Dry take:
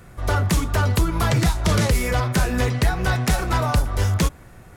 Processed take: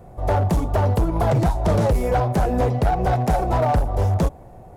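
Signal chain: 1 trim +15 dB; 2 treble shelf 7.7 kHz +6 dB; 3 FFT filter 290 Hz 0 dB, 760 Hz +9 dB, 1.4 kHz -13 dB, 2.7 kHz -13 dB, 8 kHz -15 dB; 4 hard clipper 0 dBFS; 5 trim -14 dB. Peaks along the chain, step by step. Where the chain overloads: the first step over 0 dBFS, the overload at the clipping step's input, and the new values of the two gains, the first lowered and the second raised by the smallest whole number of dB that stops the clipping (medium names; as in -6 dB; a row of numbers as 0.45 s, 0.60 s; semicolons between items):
+4.0 dBFS, +6.0 dBFS, +8.0 dBFS, 0.0 dBFS, -14.0 dBFS; step 1, 8.0 dB; step 1 +7 dB, step 5 -6 dB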